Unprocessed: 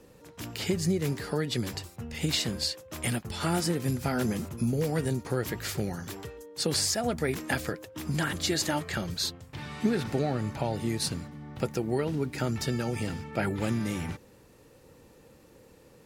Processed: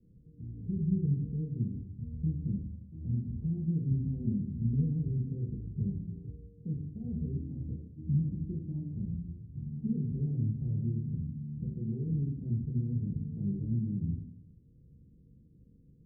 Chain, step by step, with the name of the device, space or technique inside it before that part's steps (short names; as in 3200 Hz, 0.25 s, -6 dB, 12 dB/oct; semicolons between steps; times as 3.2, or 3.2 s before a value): club heard from the street (limiter -20 dBFS, peak gain reduction 6 dB; LPF 230 Hz 24 dB/oct; reverb RT60 0.70 s, pre-delay 3 ms, DRR -4.5 dB); gain -5 dB